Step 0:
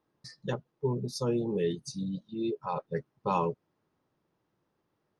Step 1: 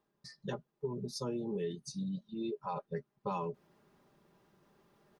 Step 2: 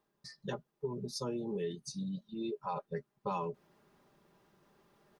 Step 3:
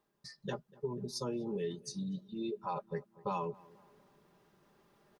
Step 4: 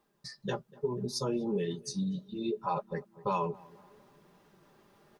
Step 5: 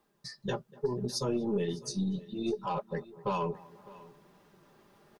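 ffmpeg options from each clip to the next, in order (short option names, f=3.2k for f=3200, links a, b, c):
-af "areverse,acompressor=mode=upward:threshold=-50dB:ratio=2.5,areverse,aecho=1:1:5:0.49,acompressor=threshold=-28dB:ratio=6,volume=-5dB"
-af "equalizer=f=150:w=0.36:g=-2.5,volume=1.5dB"
-filter_complex "[0:a]asplit=2[a][b];[b]adelay=243,lowpass=f=1.8k:p=1,volume=-22dB,asplit=2[c][d];[d]adelay=243,lowpass=f=1.8k:p=1,volume=0.51,asplit=2[e][f];[f]adelay=243,lowpass=f=1.8k:p=1,volume=0.51,asplit=2[g][h];[h]adelay=243,lowpass=f=1.8k:p=1,volume=0.51[i];[a][c][e][g][i]amix=inputs=5:normalize=0"
-af "flanger=delay=3.4:depth=9.9:regen=-40:speed=0.68:shape=triangular,volume=9dB"
-filter_complex "[0:a]acrossover=split=590|2600[a][b][c];[a]aeval=exprs='0.0794*(cos(1*acos(clip(val(0)/0.0794,-1,1)))-cos(1*PI/2))+0.00398*(cos(4*acos(clip(val(0)/0.0794,-1,1)))-cos(4*PI/2))':c=same[d];[b]asoftclip=type=tanh:threshold=-31.5dB[e];[d][e][c]amix=inputs=3:normalize=0,aecho=1:1:603:0.0944,volume=1dB"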